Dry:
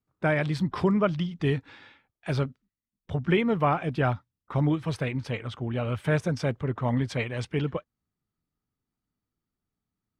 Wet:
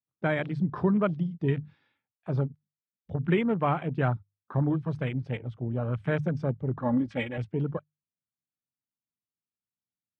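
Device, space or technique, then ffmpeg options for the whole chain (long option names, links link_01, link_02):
over-cleaned archive recording: -filter_complex "[0:a]highpass=130,lowpass=6700,bandreject=frequency=50:width_type=h:width=6,bandreject=frequency=100:width_type=h:width=6,bandreject=frequency=150:width_type=h:width=6,afwtdn=0.0158,equalizer=frequency=100:width_type=o:width=1.7:gain=8,asettb=1/sr,asplit=3[link_01][link_02][link_03];[link_01]atrim=end=6.804[link_04];[link_02]atrim=start=6.8:end=7.38,asetpts=PTS-STARTPTS,afade=type=in:duration=0.004:curve=qsin,afade=type=out:start_time=0.576:duration=0.004:curve=qsin,aecho=1:1:3.6:0.77,atrim=end_sample=25578[link_05];[link_03]atrim=start=7.376[link_06];[link_04][link_05]acrossfade=duration=0.004:curve1=hsin:curve2=qsin[link_07];[link_07][link_06]acrossfade=duration=0.004:curve1=qsin:curve2=hsin,volume=-3dB"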